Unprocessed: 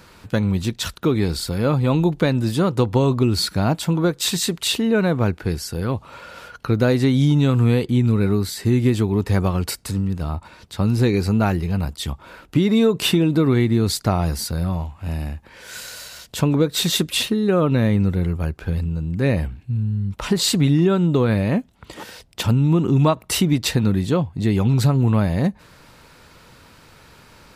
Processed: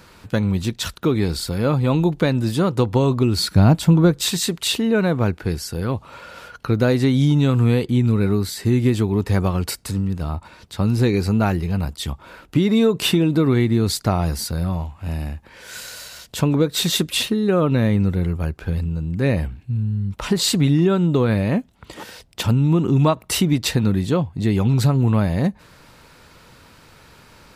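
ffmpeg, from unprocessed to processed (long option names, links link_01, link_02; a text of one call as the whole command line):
ffmpeg -i in.wav -filter_complex "[0:a]asettb=1/sr,asplit=3[link_01][link_02][link_03];[link_01]atrim=end=3.544[link_04];[link_02]atrim=start=3.54:end=4.25,asetpts=PTS-STARTPTS,afade=type=in:duration=0.004:curve=qsin,afade=type=out:start_time=0.706:duration=0.004:curve=qsin,lowshelf=frequency=220:gain=11[link_05];[link_03]atrim=start=4.246[link_06];[link_04][link_05]acrossfade=duration=0.004:curve1=hsin:curve2=qsin[link_07];[link_07][link_06]acrossfade=duration=0.004:curve1=qsin:curve2=hsin" out.wav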